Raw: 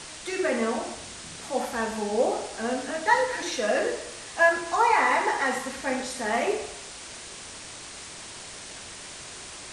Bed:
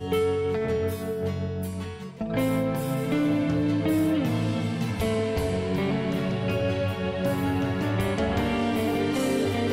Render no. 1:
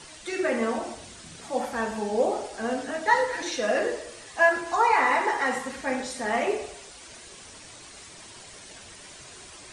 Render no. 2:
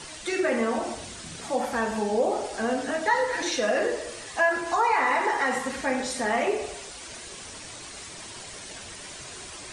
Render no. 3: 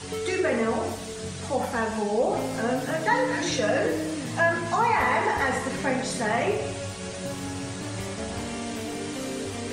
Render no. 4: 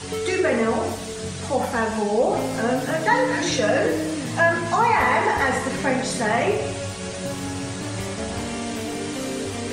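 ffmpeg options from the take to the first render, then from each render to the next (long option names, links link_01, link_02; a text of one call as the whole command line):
ffmpeg -i in.wav -af "afftdn=noise_reduction=8:noise_floor=-42" out.wav
ffmpeg -i in.wav -filter_complex "[0:a]asplit=2[link_01][link_02];[link_02]alimiter=limit=-18.5dB:level=0:latency=1:release=32,volume=-2.5dB[link_03];[link_01][link_03]amix=inputs=2:normalize=0,acompressor=threshold=-27dB:ratio=1.5" out.wav
ffmpeg -i in.wav -i bed.wav -filter_complex "[1:a]volume=-8dB[link_01];[0:a][link_01]amix=inputs=2:normalize=0" out.wav
ffmpeg -i in.wav -af "volume=4dB" out.wav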